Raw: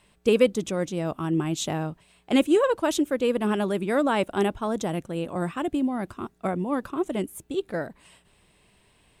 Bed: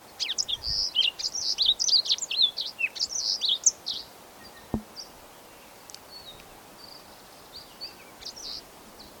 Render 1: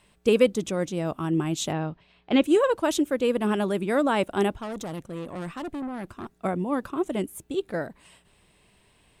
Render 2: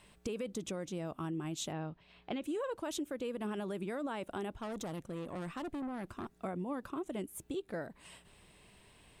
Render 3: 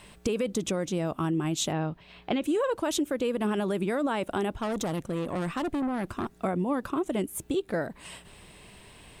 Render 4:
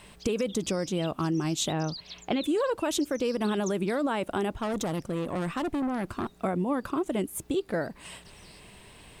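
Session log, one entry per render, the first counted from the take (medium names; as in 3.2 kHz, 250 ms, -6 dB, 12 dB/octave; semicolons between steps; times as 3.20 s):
1.72–2.44 s: low-pass 4.6 kHz 24 dB/octave; 4.56–6.31 s: valve stage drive 30 dB, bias 0.45
peak limiter -19 dBFS, peak gain reduction 11.5 dB; compression 2.5:1, threshold -41 dBFS, peak gain reduction 12.5 dB
trim +10.5 dB
add bed -20.5 dB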